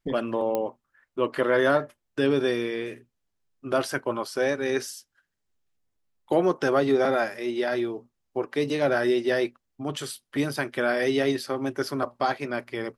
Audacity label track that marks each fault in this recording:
0.550000	0.550000	pop -14 dBFS

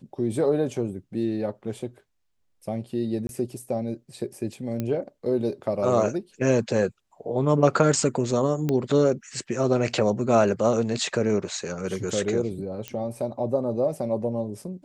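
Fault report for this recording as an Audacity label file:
3.270000	3.290000	gap 21 ms
4.800000	4.800000	pop -15 dBFS
8.690000	8.690000	pop -13 dBFS
12.880000	12.880000	pop -16 dBFS

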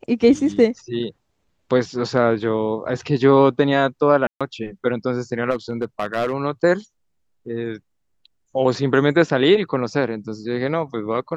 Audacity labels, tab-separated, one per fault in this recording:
4.270000	4.410000	gap 0.136 s
5.500000	6.340000	clipped -16 dBFS

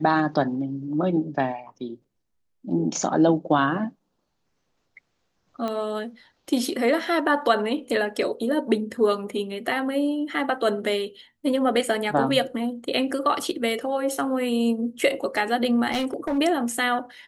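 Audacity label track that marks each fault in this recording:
5.680000	5.680000	pop -17 dBFS
15.910000	16.390000	clipped -21 dBFS

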